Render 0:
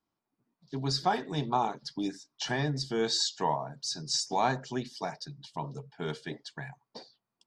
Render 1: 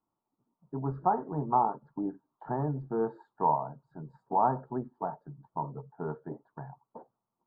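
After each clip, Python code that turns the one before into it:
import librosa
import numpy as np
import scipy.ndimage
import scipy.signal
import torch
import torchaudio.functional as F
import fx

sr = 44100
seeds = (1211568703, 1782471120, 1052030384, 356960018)

y = scipy.signal.sosfilt(scipy.signal.ellip(4, 1.0, 50, 1300.0, 'lowpass', fs=sr, output='sos'), x)
y = fx.peak_eq(y, sr, hz=900.0, db=7.5, octaves=0.21)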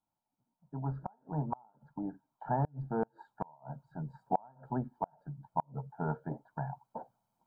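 y = fx.gate_flip(x, sr, shuts_db=-20.0, range_db=-35)
y = y + 0.61 * np.pad(y, (int(1.3 * sr / 1000.0), 0))[:len(y)]
y = fx.rider(y, sr, range_db=10, speed_s=2.0)
y = y * librosa.db_to_amplitude(-1.5)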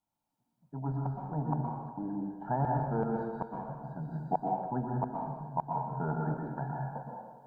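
y = fx.rev_plate(x, sr, seeds[0], rt60_s=1.4, hf_ratio=0.8, predelay_ms=105, drr_db=-1.0)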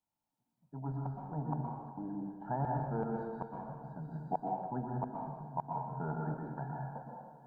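y = fx.echo_feedback(x, sr, ms=311, feedback_pct=58, wet_db=-19.0)
y = y * librosa.db_to_amplitude(-4.5)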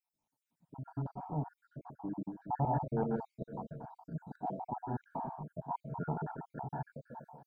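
y = fx.spec_dropout(x, sr, seeds[1], share_pct=57)
y = y * librosa.db_to_amplitude(3.0)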